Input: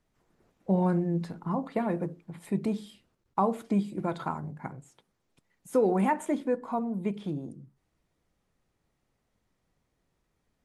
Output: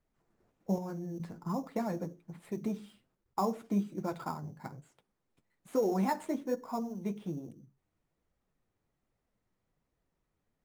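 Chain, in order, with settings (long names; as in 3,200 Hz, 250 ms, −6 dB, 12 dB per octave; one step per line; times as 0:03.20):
in parallel at −3 dB: sample-rate reduction 6,100 Hz, jitter 0%
on the sum: flanger 1.2 Hz, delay 1.3 ms, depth 9.5 ms, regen −36%
0:00.78–0:01.20: output level in coarse steps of 11 dB
level −6 dB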